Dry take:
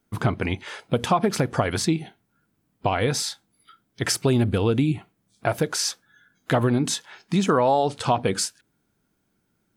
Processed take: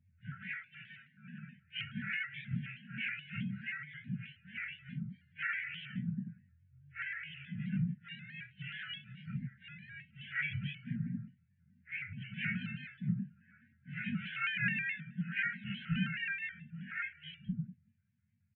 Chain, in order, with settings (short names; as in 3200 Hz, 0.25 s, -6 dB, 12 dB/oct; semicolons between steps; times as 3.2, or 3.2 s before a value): spectrum mirrored in octaves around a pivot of 1200 Hz; steep low-pass 2700 Hz 72 dB/oct; compressor 6:1, threshold -25 dBFS, peak gain reduction 13.5 dB; echo 0.824 s -4.5 dB; plain phase-vocoder stretch 1.9×; brick-wall FIR band-stop 230–1400 Hz; doubler 23 ms -7.5 dB; shaped vibrato square 4.7 Hz, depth 100 cents; gain -3.5 dB